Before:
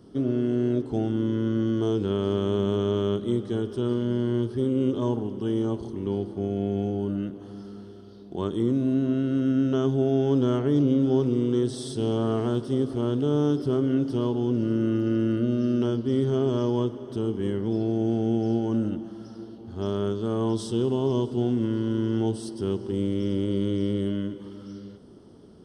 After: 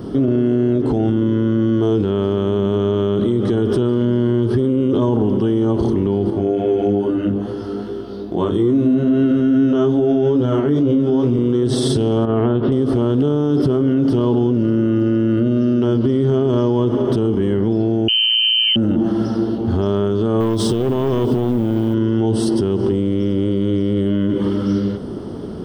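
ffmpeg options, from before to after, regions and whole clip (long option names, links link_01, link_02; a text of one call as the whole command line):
ffmpeg -i in.wav -filter_complex "[0:a]asettb=1/sr,asplit=3[link_01][link_02][link_03];[link_01]atrim=end=6.304[link_04];[link_02]atrim=start=6.3:end=11.39,asetpts=PTS-STARTPTS,afade=type=in:duration=0.004:curve=qsin,afade=type=out:start_time=5.086:duration=0.004:curve=qsin,bandreject=frequency=50:width_type=h:width=6,bandreject=frequency=100:width_type=h:width=6,bandreject=frequency=150:width_type=h:width=6,bandreject=frequency=200:width_type=h:width=6,acompressor=threshold=-41dB:ratio=1.5:attack=3.2:release=140:knee=1:detection=peak,flanger=delay=17.5:depth=2.7:speed=2.4[link_05];[link_03]atrim=start=11.386[link_06];[link_04][link_05]acrossfade=duration=0.004:curve1=hsin:curve2=qsin[link_07];[link_07][link_06]acrossfade=duration=0.004:curve1=qsin:curve2=hsin,asettb=1/sr,asplit=3[link_08][link_09][link_10];[link_08]atrim=end=12.254[link_11];[link_09]atrim=start=12.25:end=12.72,asetpts=PTS-STARTPTS,afade=type=in:duration=0.004:curve=qsin,afade=type=out:start_time=0.466:duration=0.004:curve=qsin,lowpass=frequency=3100:width=0.5412,lowpass=frequency=3100:width=1.3066,acompressor=threshold=-31dB:ratio=10:attack=3.2:release=140:knee=1:detection=peak[link_12];[link_10]atrim=start=12.716[link_13];[link_11][link_12]acrossfade=duration=0.004:curve1=hsin:curve2=qsin[link_14];[link_14][link_13]acrossfade=duration=0.004:curve1=qsin:curve2=hsin,asettb=1/sr,asplit=3[link_15][link_16][link_17];[link_15]atrim=end=18.084[link_18];[link_16]atrim=start=18.08:end=18.76,asetpts=PTS-STARTPTS,afade=type=in:duration=0.004:curve=qsin,afade=type=out:start_time=0.676:duration=0.004:curve=qsin,equalizer=frequency=120:width=2.5:gain=13.5,asoftclip=type=hard:threshold=-11dB,lowpass=frequency=2700:width_type=q:width=0.5098,lowpass=frequency=2700:width_type=q:width=0.6013,lowpass=frequency=2700:width_type=q:width=0.9,lowpass=frequency=2700:width_type=q:width=2.563,afreqshift=-3200[link_19];[link_17]atrim=start=18.756[link_20];[link_18][link_19]acrossfade=duration=0.004:curve1=hsin:curve2=qsin[link_21];[link_21][link_20]acrossfade=duration=0.004:curve1=qsin:curve2=hsin,asettb=1/sr,asplit=3[link_22][link_23][link_24];[link_22]atrim=end=20.404[link_25];[link_23]atrim=start=20.4:end=21.94,asetpts=PTS-STARTPTS,afade=type=in:duration=0.004:curve=qsin,afade=type=out:start_time=1.536:duration=0.004:curve=qsin,acrusher=bits=8:mode=log:mix=0:aa=0.000001,aeval=exprs='clip(val(0),-1,0.0398)':channel_layout=same[link_26];[link_24]atrim=start=21.936[link_27];[link_25][link_26]acrossfade=duration=0.004:curve1=hsin:curve2=qsin[link_28];[link_28][link_27]acrossfade=duration=0.004:curve1=qsin:curve2=hsin,equalizer=frequency=7300:width=0.59:gain=-8.5,acompressor=threshold=-26dB:ratio=6,alimiter=level_in=30dB:limit=-1dB:release=50:level=0:latency=1,volume=-8dB" out.wav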